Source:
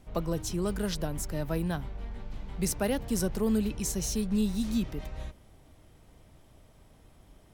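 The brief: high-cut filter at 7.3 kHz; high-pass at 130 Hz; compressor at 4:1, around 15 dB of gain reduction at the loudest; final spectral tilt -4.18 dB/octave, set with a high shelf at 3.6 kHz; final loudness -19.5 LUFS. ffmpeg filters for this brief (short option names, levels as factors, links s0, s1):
-af "highpass=130,lowpass=7300,highshelf=f=3600:g=7.5,acompressor=threshold=0.00708:ratio=4,volume=17.8"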